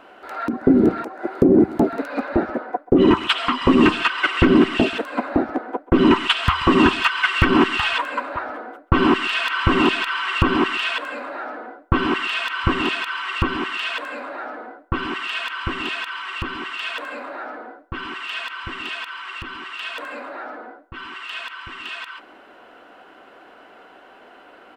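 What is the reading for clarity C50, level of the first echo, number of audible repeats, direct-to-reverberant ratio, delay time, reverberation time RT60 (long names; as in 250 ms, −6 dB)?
no reverb audible, −20.0 dB, 1, no reverb audible, 133 ms, no reverb audible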